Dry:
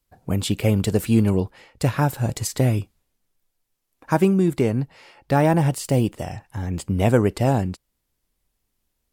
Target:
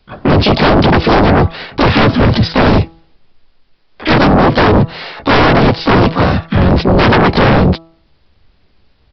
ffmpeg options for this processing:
-filter_complex "[0:a]acrossover=split=560|2200[s0][s1][s2];[s0]acompressor=threshold=0.1:ratio=4[s3];[s1]acompressor=threshold=0.0224:ratio=4[s4];[s2]acompressor=threshold=0.0158:ratio=4[s5];[s3][s4][s5]amix=inputs=3:normalize=0,asplit=4[s6][s7][s8][s9];[s7]asetrate=35002,aresample=44100,atempo=1.25992,volume=0.891[s10];[s8]asetrate=66075,aresample=44100,atempo=0.66742,volume=0.794[s11];[s9]asetrate=88200,aresample=44100,atempo=0.5,volume=0.794[s12];[s6][s10][s11][s12]amix=inputs=4:normalize=0,aresample=11025,aeval=exprs='0.596*sin(PI/2*5.01*val(0)/0.596)':c=same,aresample=44100,bandreject=f=164.2:t=h:w=4,bandreject=f=328.4:t=h:w=4,bandreject=f=492.6:t=h:w=4,bandreject=f=656.8:t=h:w=4,bandreject=f=821:t=h:w=4,bandreject=f=985.2:t=h:w=4,bandreject=f=1149.4:t=h:w=4,bandreject=f=1313.6:t=h:w=4"

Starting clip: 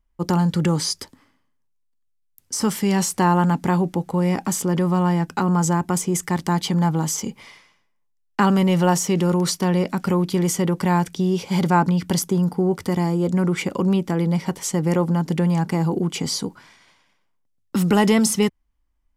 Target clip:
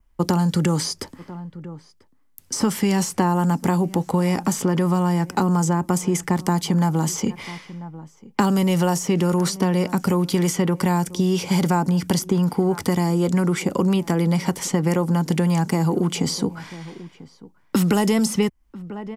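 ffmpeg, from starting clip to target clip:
-filter_complex "[0:a]adynamicequalizer=threshold=0.00398:dfrequency=3800:dqfactor=2.8:tfrequency=3800:tqfactor=2.8:attack=5:release=100:ratio=0.375:range=2.5:mode=cutabove:tftype=bell,asplit=2[s0][s1];[s1]adelay=991.3,volume=0.0631,highshelf=f=4000:g=-22.3[s2];[s0][s2]amix=inputs=2:normalize=0,acrossover=split=92|940|4800[s3][s4][s5][s6];[s3]acompressor=threshold=0.002:ratio=4[s7];[s4]acompressor=threshold=0.0447:ratio=4[s8];[s5]acompressor=threshold=0.00891:ratio=4[s9];[s6]acompressor=threshold=0.01:ratio=4[s10];[s7][s8][s9][s10]amix=inputs=4:normalize=0,volume=2.66"

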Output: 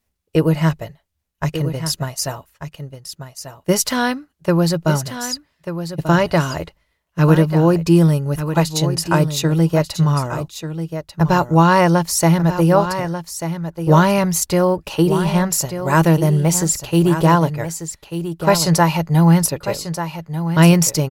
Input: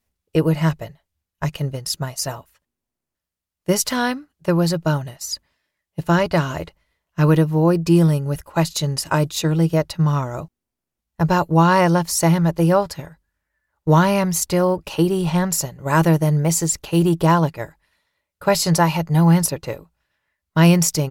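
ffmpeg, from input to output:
-af "aecho=1:1:1190:0.316,volume=1.26"

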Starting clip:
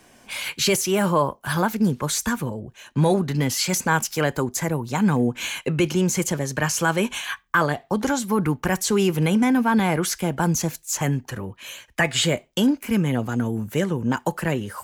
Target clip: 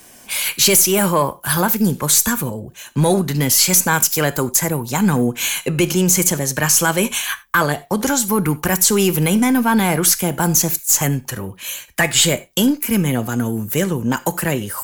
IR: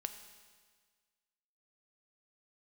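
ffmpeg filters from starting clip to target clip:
-filter_complex "[0:a]aemphasis=mode=production:type=50fm,aeval=exprs='0.794*(cos(1*acos(clip(val(0)/0.794,-1,1)))-cos(1*PI/2))+0.0562*(cos(5*acos(clip(val(0)/0.794,-1,1)))-cos(5*PI/2))+0.0141*(cos(6*acos(clip(val(0)/0.794,-1,1)))-cos(6*PI/2))':c=same,asplit=2[s0][s1];[1:a]atrim=start_sample=2205,afade=t=out:st=0.13:d=0.01,atrim=end_sample=6174,asetrate=37044,aresample=44100[s2];[s1][s2]afir=irnorm=-1:irlink=0,volume=1.33[s3];[s0][s3]amix=inputs=2:normalize=0,volume=0.562"

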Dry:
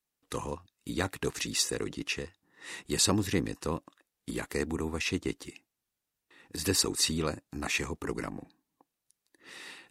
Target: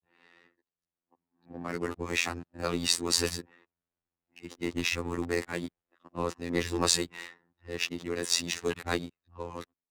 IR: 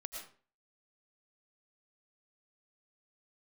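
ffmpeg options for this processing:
-filter_complex "[0:a]areverse,dynaudnorm=f=310:g=7:m=3.98,asplit=2[s0][s1];[s1]aeval=exprs='sgn(val(0))*max(abs(val(0))-0.0335,0)':c=same,volume=0.447[s2];[s0][s2]amix=inputs=2:normalize=0,adynamicsmooth=sensitivity=5.5:basefreq=1900,afftfilt=real='hypot(re,im)*cos(PI*b)':imag='0':win_size=2048:overlap=0.75,acrossover=split=240[s3][s4];[s3]asoftclip=type=tanh:threshold=0.0355[s5];[s5][s4]amix=inputs=2:normalize=0,volume=0.398"

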